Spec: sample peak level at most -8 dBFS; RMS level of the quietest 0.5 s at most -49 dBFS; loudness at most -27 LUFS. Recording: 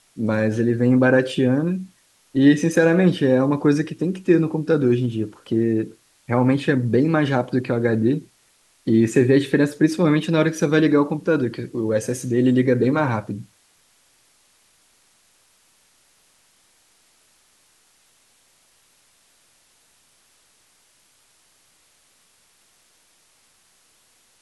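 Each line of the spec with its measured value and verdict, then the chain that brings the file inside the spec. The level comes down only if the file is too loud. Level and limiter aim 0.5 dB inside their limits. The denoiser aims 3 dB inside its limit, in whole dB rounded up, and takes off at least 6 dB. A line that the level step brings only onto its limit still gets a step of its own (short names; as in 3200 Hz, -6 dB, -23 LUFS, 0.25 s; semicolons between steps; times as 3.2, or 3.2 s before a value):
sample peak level -5.0 dBFS: fail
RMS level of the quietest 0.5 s -60 dBFS: OK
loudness -19.5 LUFS: fail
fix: gain -8 dB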